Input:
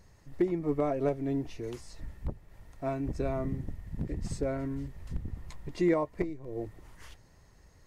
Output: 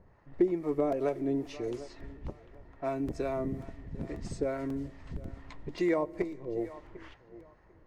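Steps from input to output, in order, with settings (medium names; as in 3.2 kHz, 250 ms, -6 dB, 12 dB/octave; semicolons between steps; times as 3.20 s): bass shelf 200 Hz -8 dB; thinning echo 747 ms, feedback 27%, high-pass 170 Hz, level -19.5 dB; on a send at -21 dB: reverberation RT60 1.7 s, pre-delay 3 ms; on the sum: harmonic tremolo 2.3 Hz, depth 50%, crossover 650 Hz; in parallel at +1.5 dB: compression, threshold -43 dBFS, peak gain reduction 17.5 dB; on the sum: level-controlled noise filter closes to 1.2 kHz, open at -31 dBFS; dynamic bell 400 Hz, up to +4 dB, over -44 dBFS, Q 1.2; crackling interface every 0.54 s, samples 128, repeat, from 0.92 s; trim -1 dB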